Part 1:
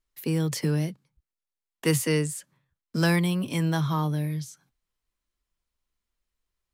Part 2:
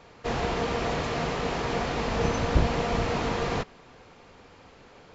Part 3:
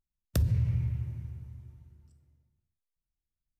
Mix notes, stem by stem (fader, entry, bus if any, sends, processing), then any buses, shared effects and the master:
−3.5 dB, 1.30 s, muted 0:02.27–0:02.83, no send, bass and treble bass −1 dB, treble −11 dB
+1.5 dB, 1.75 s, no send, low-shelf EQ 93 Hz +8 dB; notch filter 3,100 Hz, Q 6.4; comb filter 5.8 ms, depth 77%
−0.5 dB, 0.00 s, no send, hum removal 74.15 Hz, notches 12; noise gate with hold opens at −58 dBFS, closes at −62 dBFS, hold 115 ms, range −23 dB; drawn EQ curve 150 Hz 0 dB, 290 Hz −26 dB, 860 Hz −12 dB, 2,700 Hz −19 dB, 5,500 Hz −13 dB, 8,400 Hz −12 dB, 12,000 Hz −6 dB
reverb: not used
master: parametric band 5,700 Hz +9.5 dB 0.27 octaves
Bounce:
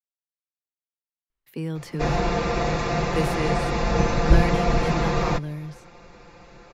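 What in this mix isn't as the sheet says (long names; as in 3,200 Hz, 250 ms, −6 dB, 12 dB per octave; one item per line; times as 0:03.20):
stem 3: muted
master: missing parametric band 5,700 Hz +9.5 dB 0.27 octaves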